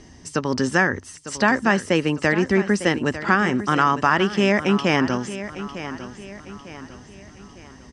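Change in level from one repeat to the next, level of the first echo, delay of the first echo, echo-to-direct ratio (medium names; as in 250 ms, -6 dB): -7.5 dB, -13.0 dB, 902 ms, -12.0 dB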